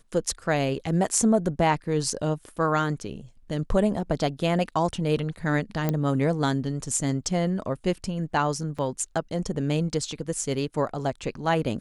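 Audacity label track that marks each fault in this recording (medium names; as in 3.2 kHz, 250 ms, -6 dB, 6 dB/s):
5.890000	5.890000	pop -12 dBFS
8.780000	8.790000	dropout 5.7 ms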